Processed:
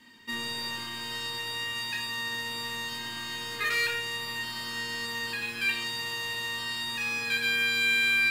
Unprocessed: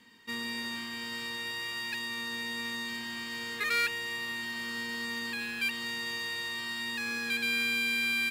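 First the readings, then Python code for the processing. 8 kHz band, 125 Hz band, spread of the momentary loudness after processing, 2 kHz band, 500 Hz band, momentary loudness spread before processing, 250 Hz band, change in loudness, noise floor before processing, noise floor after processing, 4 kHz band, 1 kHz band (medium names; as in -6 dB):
+3.5 dB, +6.5 dB, 10 LU, +3.0 dB, +3.0 dB, 9 LU, -3.5 dB, +3.0 dB, -39 dBFS, -38 dBFS, +4.0 dB, +3.0 dB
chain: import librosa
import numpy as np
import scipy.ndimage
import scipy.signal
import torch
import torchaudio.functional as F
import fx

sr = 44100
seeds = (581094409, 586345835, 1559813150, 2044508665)

y = fx.room_shoebox(x, sr, seeds[0], volume_m3=840.0, walls='furnished', distance_m=2.7)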